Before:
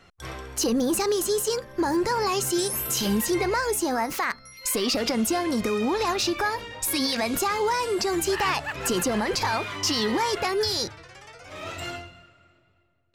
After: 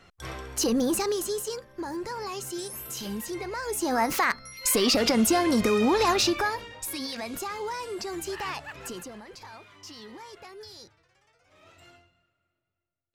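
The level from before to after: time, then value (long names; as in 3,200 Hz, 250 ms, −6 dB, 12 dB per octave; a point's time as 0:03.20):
0:00.85 −1 dB
0:01.75 −10 dB
0:03.52 −10 dB
0:04.04 +2.5 dB
0:06.19 +2.5 dB
0:06.97 −9 dB
0:08.75 −9 dB
0:09.23 −20 dB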